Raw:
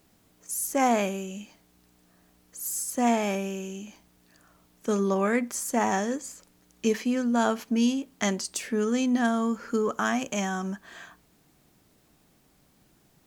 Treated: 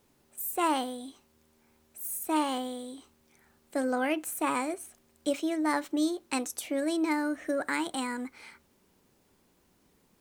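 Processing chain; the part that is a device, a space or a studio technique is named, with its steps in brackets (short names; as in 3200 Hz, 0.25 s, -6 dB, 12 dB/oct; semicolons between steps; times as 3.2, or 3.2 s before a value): nightcore (varispeed +30%); gain -4 dB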